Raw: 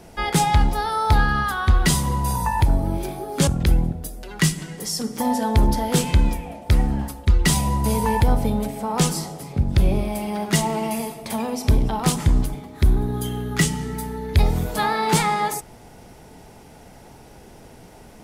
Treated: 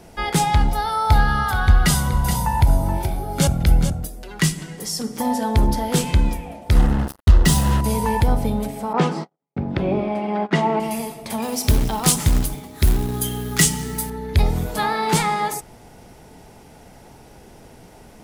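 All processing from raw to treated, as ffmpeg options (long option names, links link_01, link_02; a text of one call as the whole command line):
ffmpeg -i in.wav -filter_complex "[0:a]asettb=1/sr,asplit=3[link_01][link_02][link_03];[link_01]atrim=end=0.684[link_04];[link_02]atrim=start=0.68:end=4.05,asetpts=PTS-STARTPTS,afade=type=in:duration=0.004:curve=qsin,afade=type=out:start_time=3.366:duration=0.004:curve=qsin,equalizer=frequency=12000:width=6.6:gain=5.5,aecho=1:1:1.4:0.37,atrim=end_sample=148617,aecho=1:1:426:0.355,atrim=end_sample=148617[link_05];[link_03]atrim=start=4.046[link_06];[link_04][link_05]acrossfade=duration=0.004:curve1=hsin:curve2=qsin[link_07];[link_07][link_06]acrossfade=duration=0.004:curve1=qsin:curve2=hsin,asettb=1/sr,asplit=3[link_08][link_09][link_10];[link_08]atrim=end=6.754[link_11];[link_09]atrim=start=6.75:end=7.81,asetpts=PTS-STARTPTS,afade=type=in:duration=0.004:curve=qsin,afade=type=out:start_time=1.056:duration=0.004:curve=qsin,lowshelf=frequency=250:gain=5,acrusher=bits=3:mix=0:aa=0.5,bandreject=frequency=2300:width=6[link_12];[link_10]atrim=start=7.806[link_13];[link_11][link_12]acrossfade=duration=0.004:curve1=hsin:curve2=qsin[link_14];[link_14][link_13]acrossfade=duration=0.004:curve1=qsin:curve2=hsin,asettb=1/sr,asplit=3[link_15][link_16][link_17];[link_15]atrim=end=8.934[link_18];[link_16]atrim=start=8.93:end=10.8,asetpts=PTS-STARTPTS,afade=type=in:duration=0.004:curve=qsin,afade=type=out:start_time=1.866:duration=0.004:curve=qsin,agate=range=-53dB:threshold=-29dB:ratio=16:release=100:detection=peak,highpass=210,lowpass=2100,acontrast=33[link_19];[link_17]atrim=start=10.796[link_20];[link_18][link_19]acrossfade=duration=0.004:curve1=hsin:curve2=qsin[link_21];[link_21][link_20]acrossfade=duration=0.004:curve1=qsin:curve2=hsin,asettb=1/sr,asplit=3[link_22][link_23][link_24];[link_22]atrim=end=11.424[link_25];[link_23]atrim=start=11.42:end=14.1,asetpts=PTS-STARTPTS,afade=type=in:duration=0.004:curve=qsin,afade=type=out:start_time=2.676:duration=0.004:curve=qsin,highshelf=frequency=4000:gain=11,acrusher=bits=4:mode=log:mix=0:aa=0.000001[link_26];[link_24]atrim=start=14.096[link_27];[link_25][link_26]acrossfade=duration=0.004:curve1=hsin:curve2=qsin[link_28];[link_28][link_27]acrossfade=duration=0.004:curve1=qsin:curve2=hsin" out.wav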